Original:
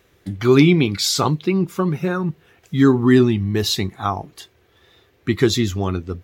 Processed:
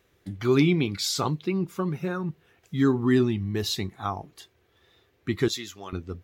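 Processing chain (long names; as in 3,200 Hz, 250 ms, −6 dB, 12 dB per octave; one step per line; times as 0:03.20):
0:05.48–0:05.93: high-pass filter 1,200 Hz 6 dB per octave
level −8 dB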